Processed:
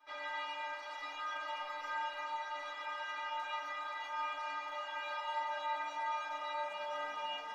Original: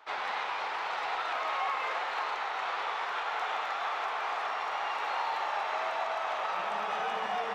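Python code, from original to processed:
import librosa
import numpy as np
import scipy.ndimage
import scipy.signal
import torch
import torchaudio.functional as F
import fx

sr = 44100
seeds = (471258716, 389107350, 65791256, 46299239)

y = fx.stiff_resonator(x, sr, f0_hz=290.0, decay_s=0.55, stiffness=0.008)
y = y * librosa.db_to_amplitude(9.5)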